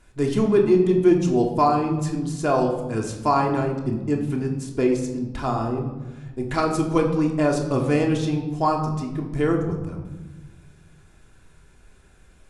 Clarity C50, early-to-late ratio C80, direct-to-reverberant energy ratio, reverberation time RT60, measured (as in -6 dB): 7.0 dB, 9.0 dB, 1.0 dB, 1.1 s